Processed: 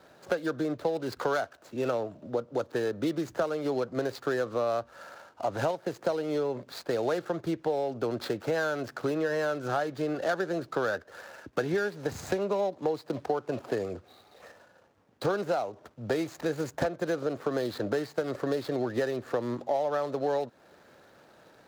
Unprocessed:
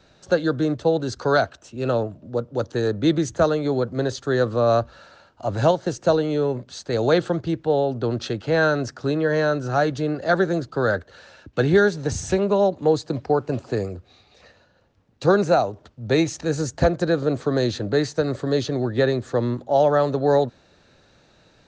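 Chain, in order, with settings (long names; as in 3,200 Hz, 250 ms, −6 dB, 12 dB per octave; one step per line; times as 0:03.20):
running median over 15 samples
high-pass filter 520 Hz 6 dB per octave
downward compressor 6 to 1, threshold −32 dBFS, peak gain reduction 15.5 dB
level +5.5 dB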